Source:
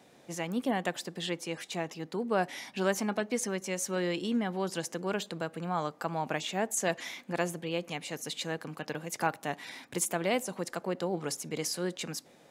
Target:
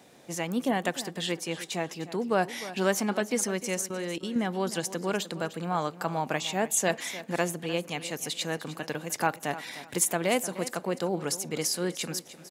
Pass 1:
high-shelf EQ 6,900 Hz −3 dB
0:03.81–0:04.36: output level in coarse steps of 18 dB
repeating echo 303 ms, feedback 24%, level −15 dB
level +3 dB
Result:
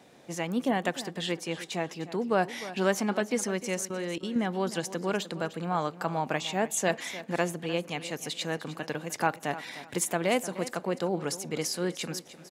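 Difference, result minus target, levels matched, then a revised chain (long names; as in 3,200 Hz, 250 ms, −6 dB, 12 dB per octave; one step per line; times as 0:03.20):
8,000 Hz band −3.5 dB
high-shelf EQ 6,900 Hz +5 dB
0:03.81–0:04.36: output level in coarse steps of 18 dB
repeating echo 303 ms, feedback 24%, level −15 dB
level +3 dB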